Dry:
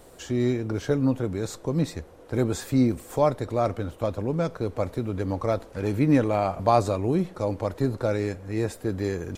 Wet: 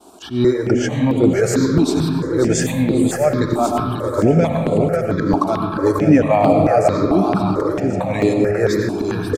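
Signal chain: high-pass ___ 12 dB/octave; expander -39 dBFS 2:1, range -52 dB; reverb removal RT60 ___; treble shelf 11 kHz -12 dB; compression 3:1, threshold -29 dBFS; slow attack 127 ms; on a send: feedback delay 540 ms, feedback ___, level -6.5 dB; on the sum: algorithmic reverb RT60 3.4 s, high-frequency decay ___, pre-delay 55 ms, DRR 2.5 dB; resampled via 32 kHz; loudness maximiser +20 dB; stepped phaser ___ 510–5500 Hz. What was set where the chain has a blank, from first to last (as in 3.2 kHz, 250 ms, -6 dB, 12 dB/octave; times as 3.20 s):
140 Hz, 1.6 s, 44%, 0.3×, 4.5 Hz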